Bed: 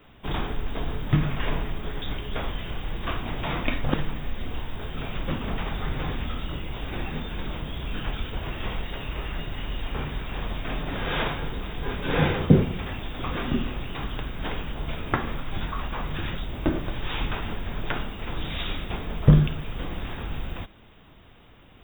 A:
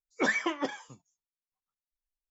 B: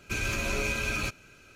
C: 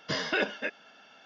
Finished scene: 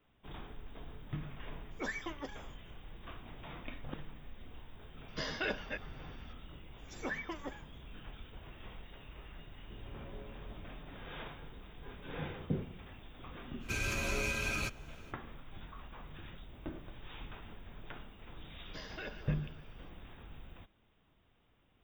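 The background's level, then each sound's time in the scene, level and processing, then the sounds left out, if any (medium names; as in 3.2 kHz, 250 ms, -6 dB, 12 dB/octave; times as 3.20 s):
bed -19 dB
1.60 s: add A -12 dB
5.08 s: add C -8 dB
6.67 s: add A -11.5 dB + bands offset in time highs, lows 160 ms, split 3.8 kHz
9.60 s: add B -16 dB + Chebyshev low-pass 860 Hz, order 3
13.59 s: add B -5 dB, fades 0.05 s
18.65 s: add C -17 dB + two-band feedback delay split 1 kHz, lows 186 ms, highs 140 ms, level -11.5 dB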